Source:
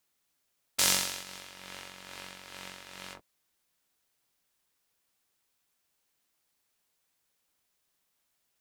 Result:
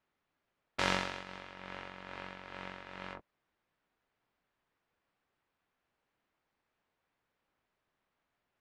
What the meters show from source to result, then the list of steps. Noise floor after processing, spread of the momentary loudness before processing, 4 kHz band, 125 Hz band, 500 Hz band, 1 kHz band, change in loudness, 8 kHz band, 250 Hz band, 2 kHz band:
−85 dBFS, 20 LU, −9.0 dB, +3.5 dB, +3.5 dB, +3.0 dB, −12.0 dB, −20.5 dB, +3.5 dB, 0.0 dB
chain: low-pass filter 1,900 Hz 12 dB per octave
level +3.5 dB

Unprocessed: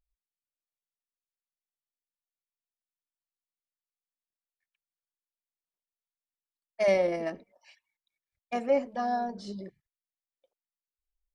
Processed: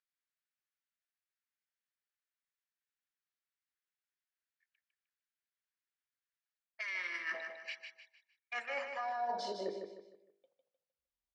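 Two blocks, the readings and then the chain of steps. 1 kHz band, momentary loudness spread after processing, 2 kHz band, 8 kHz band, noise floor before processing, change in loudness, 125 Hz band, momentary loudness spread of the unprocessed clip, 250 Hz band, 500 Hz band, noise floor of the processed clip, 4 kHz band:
−6.5 dB, 10 LU, +1.5 dB, can't be measured, below −85 dBFS, −10.5 dB, below −15 dB, 17 LU, −18.0 dB, −15.0 dB, below −85 dBFS, −0.5 dB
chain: noise gate −58 dBFS, range −14 dB
high-pass filter sweep 1,600 Hz → 91 Hz, 0:08.71–0:10.98
hum removal 50.24 Hz, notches 21
brickwall limiter −28 dBFS, peak gain reduction 9 dB
reversed playback
downward compressor 6 to 1, threshold −50 dBFS, peak gain reduction 17 dB
reversed playback
gain on a spectral selection 0:06.81–0:07.34, 440–910 Hz −18 dB
high-frequency loss of the air 91 metres
repeating echo 153 ms, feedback 37%, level −6.5 dB
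level +13 dB

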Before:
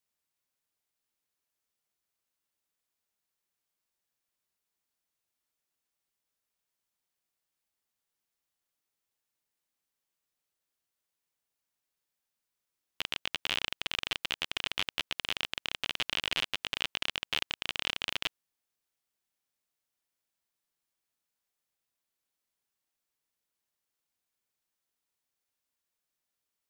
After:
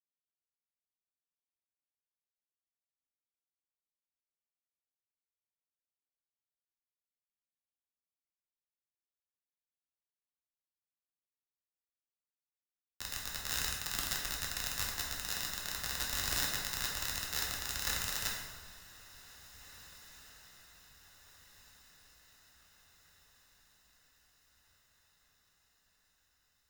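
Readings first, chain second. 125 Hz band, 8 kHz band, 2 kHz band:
+5.5 dB, +10.0 dB, −4.5 dB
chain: adaptive Wiener filter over 25 samples
low-shelf EQ 110 Hz +8 dB
wrap-around overflow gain 28.5 dB
feedback delay with all-pass diffusion 1,966 ms, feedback 67%, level −11 dB
dense smooth reverb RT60 2 s, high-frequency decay 0.6×, DRR −3.5 dB
multiband upward and downward expander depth 70%
level +4 dB

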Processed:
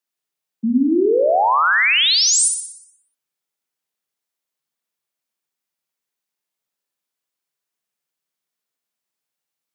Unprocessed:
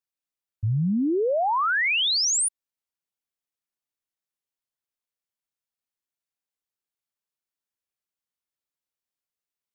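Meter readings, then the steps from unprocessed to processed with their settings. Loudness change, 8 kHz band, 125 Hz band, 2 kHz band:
+7.5 dB, +7.5 dB, below −15 dB, +8.0 dB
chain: mains-hum notches 60/120/180 Hz
frequency shifter +120 Hz
flutter between parallel walls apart 10.3 metres, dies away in 0.7 s
level +6 dB

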